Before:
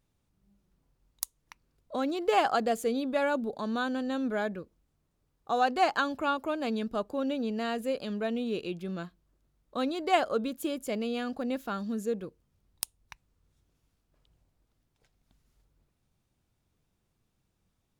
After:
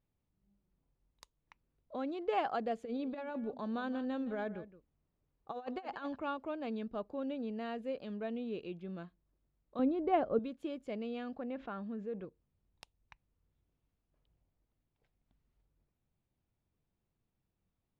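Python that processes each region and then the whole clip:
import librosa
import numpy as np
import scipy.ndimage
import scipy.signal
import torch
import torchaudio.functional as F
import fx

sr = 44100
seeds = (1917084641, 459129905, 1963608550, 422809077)

y = fx.chain(x, sr, fx.over_compress(threshold_db=-30.0, ratio=-0.5),
    fx.echo_single(ms=168, db=-14.5), at=(2.85, 6.16))
y = fx.chain(y, sr, fx.lowpass(hz=1500.0, slope=6),
    fx.low_shelf(hz=450.0, db=12.0), at=(9.79, 10.39))
y = fx.chain(y, sr, fx.lowpass(hz=2400.0, slope=12),
    fx.low_shelf(hz=440.0, db=-5.5),
    fx.env_flatten(amount_pct=50), at=(11.38, 12.25))
y = scipy.signal.sosfilt(scipy.signal.butter(2, 2700.0, 'lowpass', fs=sr, output='sos'), y)
y = fx.peak_eq(y, sr, hz=1400.0, db=-3.5, octaves=0.77)
y = y * librosa.db_to_amplitude(-7.5)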